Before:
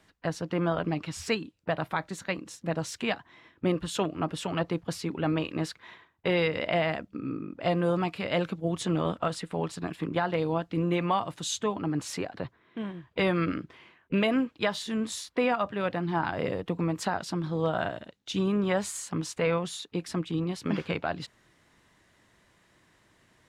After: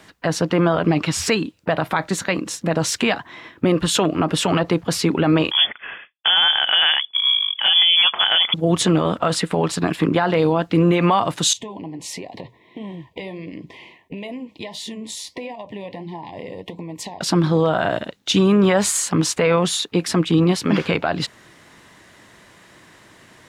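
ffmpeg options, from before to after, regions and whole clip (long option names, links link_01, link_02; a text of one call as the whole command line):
ffmpeg -i in.wav -filter_complex "[0:a]asettb=1/sr,asplit=3[link_01][link_02][link_03];[link_01]atrim=end=5.514[link_04];[link_02]atrim=start=5.51:end=8.54,asetpts=PTS-STARTPTS,afade=type=in:duration=0.004:curve=qsin,afade=type=out:start_time=3.026:duration=0.004:curve=qsin,agate=range=-33dB:threshold=-56dB:ratio=3:release=100:detection=peak,highpass=130,lowpass=frequency=3100:width_type=q:width=0.5098,lowpass=frequency=3100:width_type=q:width=0.6013,lowpass=frequency=3100:width_type=q:width=0.9,lowpass=frequency=3100:width_type=q:width=2.563,afreqshift=-3600[link_05];[link_03]atrim=start=8.536[link_06];[link_04][link_05]acrossfade=duration=0.004:curve1=hsin:curve2=qsin[link_07];[link_07][link_06]acrossfade=duration=0.004:curve1=qsin:curve2=hsin,asettb=1/sr,asplit=3[link_08][link_09][link_10];[link_08]atrim=end=11.534[link_11];[link_09]atrim=start=11.53:end=17.21,asetpts=PTS-STARTPTS,afade=type=in:duration=0.004:curve=qsin,afade=type=out:start_time=5.676:duration=0.004:curve=qsin,acompressor=threshold=-39dB:ratio=12:attack=3.2:release=140:knee=1:detection=peak,flanger=delay=4.8:depth=7.8:regen=-71:speed=1.5:shape=triangular,asuperstop=centerf=1400:order=12:qfactor=1.9[link_12];[link_10]atrim=start=17.206[link_13];[link_11][link_12]acrossfade=duration=0.004:curve1=hsin:curve2=qsin[link_14];[link_14][link_13]acrossfade=duration=0.004:curve1=qsin:curve2=hsin,lowshelf=frequency=73:gain=-11.5,alimiter=level_in=22.5dB:limit=-1dB:release=50:level=0:latency=1,volume=-6.5dB" out.wav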